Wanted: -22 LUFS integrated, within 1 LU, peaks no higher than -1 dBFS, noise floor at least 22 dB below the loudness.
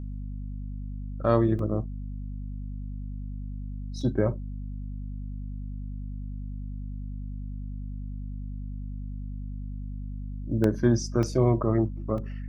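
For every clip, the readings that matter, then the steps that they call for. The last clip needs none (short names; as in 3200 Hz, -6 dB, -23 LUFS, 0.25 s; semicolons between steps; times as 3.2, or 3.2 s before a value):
dropouts 5; longest dropout 2.3 ms; hum 50 Hz; harmonics up to 250 Hz; hum level -32 dBFS; loudness -31.0 LUFS; peak -7.5 dBFS; loudness target -22.0 LUFS
-> interpolate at 1.59/4.01/10.64/11.23/12.18, 2.3 ms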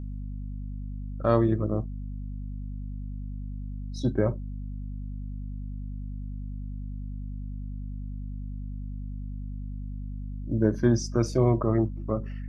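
dropouts 0; hum 50 Hz; harmonics up to 250 Hz; hum level -32 dBFS
-> de-hum 50 Hz, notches 5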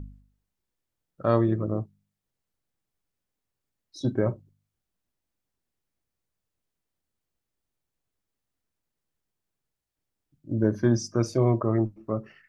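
hum none; loudness -26.5 LUFS; peak -8.0 dBFS; loudness target -22.0 LUFS
-> gain +4.5 dB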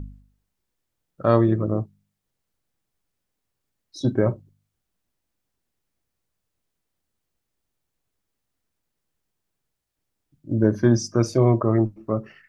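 loudness -22.0 LUFS; peak -3.5 dBFS; noise floor -80 dBFS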